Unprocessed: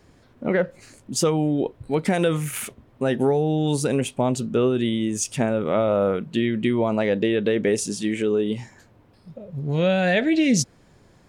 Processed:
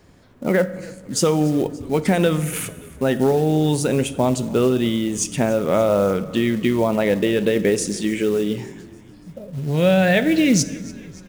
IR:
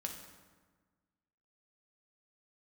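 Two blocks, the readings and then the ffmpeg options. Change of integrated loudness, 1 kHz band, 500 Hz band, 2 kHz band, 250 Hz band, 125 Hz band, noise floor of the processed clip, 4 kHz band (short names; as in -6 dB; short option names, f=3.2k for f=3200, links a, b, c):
+3.0 dB, +3.0 dB, +3.0 dB, +3.0 dB, +3.0 dB, +3.5 dB, -45 dBFS, +3.0 dB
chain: -filter_complex "[0:a]asplit=6[a][b][c][d][e][f];[b]adelay=288,afreqshift=-42,volume=-21dB[g];[c]adelay=576,afreqshift=-84,volume=-25.6dB[h];[d]adelay=864,afreqshift=-126,volume=-30.2dB[i];[e]adelay=1152,afreqshift=-168,volume=-34.7dB[j];[f]adelay=1440,afreqshift=-210,volume=-39.3dB[k];[a][g][h][i][j][k]amix=inputs=6:normalize=0,acrusher=bits=6:mode=log:mix=0:aa=0.000001,asplit=2[l][m];[1:a]atrim=start_sample=2205[n];[m][n]afir=irnorm=-1:irlink=0,volume=-6dB[o];[l][o]amix=inputs=2:normalize=0"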